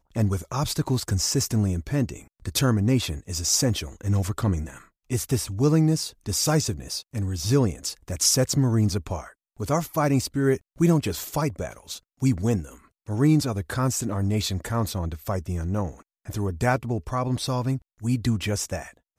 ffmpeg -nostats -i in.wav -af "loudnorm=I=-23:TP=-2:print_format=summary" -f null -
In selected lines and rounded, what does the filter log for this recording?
Input Integrated:    -25.3 LUFS
Input True Peak:      -7.7 dBTP
Input LRA:             3.5 LU
Input Threshold:     -35.5 LUFS